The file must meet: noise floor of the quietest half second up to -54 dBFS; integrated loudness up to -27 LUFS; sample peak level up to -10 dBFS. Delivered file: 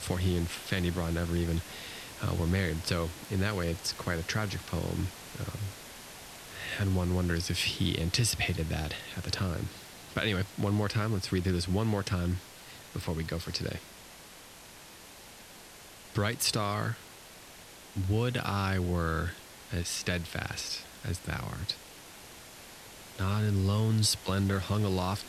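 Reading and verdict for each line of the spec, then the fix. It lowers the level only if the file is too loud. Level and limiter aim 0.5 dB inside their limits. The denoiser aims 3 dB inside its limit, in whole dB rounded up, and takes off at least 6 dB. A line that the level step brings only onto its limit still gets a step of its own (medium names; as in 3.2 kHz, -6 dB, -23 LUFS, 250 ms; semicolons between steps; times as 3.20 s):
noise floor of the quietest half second -51 dBFS: fail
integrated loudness -32.0 LUFS: pass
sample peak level -12.0 dBFS: pass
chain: noise reduction 6 dB, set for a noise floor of -51 dBFS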